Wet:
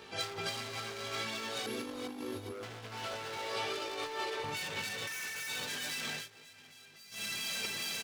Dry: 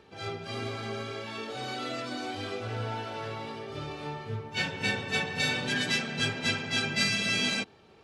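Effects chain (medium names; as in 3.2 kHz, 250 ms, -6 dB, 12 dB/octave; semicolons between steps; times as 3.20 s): chorus voices 2, 0.75 Hz, delay 19 ms, depth 1.2 ms; 1.66–2.63 s: brick-wall FIR band-stop 540–10000 Hz; peak limiter -27 dBFS, peak gain reduction 9 dB; 3.37–4.44 s: steep high-pass 300 Hz 48 dB/octave; 5.07–5.49 s: high-order bell 1.8 kHz +14.5 dB 1.2 oct; hard clipper -39 dBFS, distortion -3 dB; feedback delay 414 ms, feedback 56%, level -12 dB; compressor with a negative ratio -44 dBFS, ratio -0.5; tilt EQ +2.5 dB/octave; 6.16–7.24 s: dip -18 dB, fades 0.13 s; trim +6 dB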